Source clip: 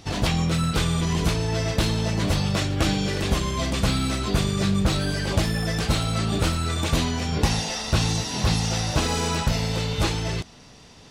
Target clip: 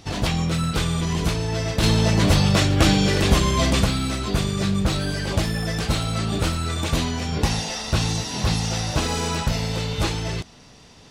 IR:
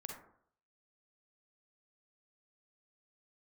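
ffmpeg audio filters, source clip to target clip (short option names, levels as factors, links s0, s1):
-filter_complex "[0:a]asplit=3[s0][s1][s2];[s0]afade=t=out:st=1.82:d=0.02[s3];[s1]acontrast=54,afade=t=in:st=1.82:d=0.02,afade=t=out:st=3.83:d=0.02[s4];[s2]afade=t=in:st=3.83:d=0.02[s5];[s3][s4][s5]amix=inputs=3:normalize=0"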